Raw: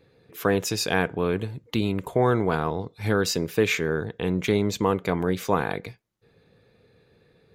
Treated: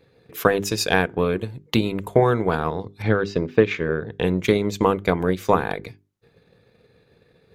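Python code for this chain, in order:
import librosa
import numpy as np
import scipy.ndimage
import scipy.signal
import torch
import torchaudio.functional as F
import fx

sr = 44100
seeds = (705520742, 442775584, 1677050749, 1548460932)

y = fx.air_absorb(x, sr, metres=210.0, at=(3.02, 4.12))
y = fx.transient(y, sr, attack_db=6, sustain_db=-5)
y = fx.hum_notches(y, sr, base_hz=50, count=8)
y = y * librosa.db_to_amplitude(2.0)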